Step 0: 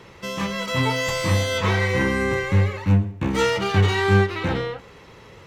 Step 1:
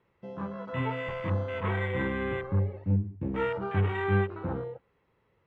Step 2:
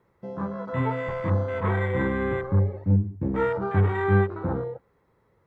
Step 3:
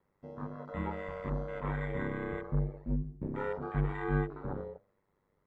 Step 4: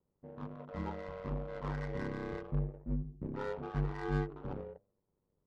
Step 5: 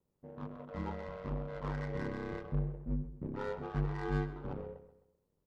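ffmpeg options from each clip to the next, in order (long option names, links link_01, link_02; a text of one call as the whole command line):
ffmpeg -i in.wav -af "lowpass=2400,afwtdn=0.0447,volume=-8.5dB" out.wav
ffmpeg -i in.wav -af "equalizer=frequency=2800:width_type=o:width=0.6:gain=-13,volume=5.5dB" out.wav
ffmpeg -i in.wav -af "bandreject=frequency=76.92:width_type=h:width=4,bandreject=frequency=153.84:width_type=h:width=4,bandreject=frequency=230.76:width_type=h:width=4,bandreject=frequency=307.68:width_type=h:width=4,bandreject=frequency=384.6:width_type=h:width=4,bandreject=frequency=461.52:width_type=h:width=4,bandreject=frequency=538.44:width_type=h:width=4,bandreject=frequency=615.36:width_type=h:width=4,bandreject=frequency=692.28:width_type=h:width=4,bandreject=frequency=769.2:width_type=h:width=4,aeval=exprs='val(0)*sin(2*PI*49*n/s)':channel_layout=same,volume=-7.5dB" out.wav
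ffmpeg -i in.wav -af "adynamicsmooth=sensitivity=7.5:basefreq=700,volume=-3dB" out.wav
ffmpeg -i in.wav -filter_complex "[0:a]asplit=2[link_01][link_02];[link_02]adelay=130,lowpass=frequency=4700:poles=1,volume=-13dB,asplit=2[link_03][link_04];[link_04]adelay=130,lowpass=frequency=4700:poles=1,volume=0.39,asplit=2[link_05][link_06];[link_06]adelay=130,lowpass=frequency=4700:poles=1,volume=0.39,asplit=2[link_07][link_08];[link_08]adelay=130,lowpass=frequency=4700:poles=1,volume=0.39[link_09];[link_01][link_03][link_05][link_07][link_09]amix=inputs=5:normalize=0" out.wav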